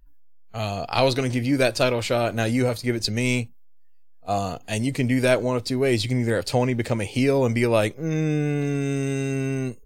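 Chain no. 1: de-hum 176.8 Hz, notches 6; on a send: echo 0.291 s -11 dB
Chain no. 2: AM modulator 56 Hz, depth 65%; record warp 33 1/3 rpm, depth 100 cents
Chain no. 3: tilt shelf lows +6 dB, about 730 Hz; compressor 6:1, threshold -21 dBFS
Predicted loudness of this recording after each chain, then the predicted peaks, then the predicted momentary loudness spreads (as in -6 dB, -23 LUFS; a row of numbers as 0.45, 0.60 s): -23.0, -27.0, -26.0 LUFS; -4.5, -6.0, -10.5 dBFS; 7, 7, 4 LU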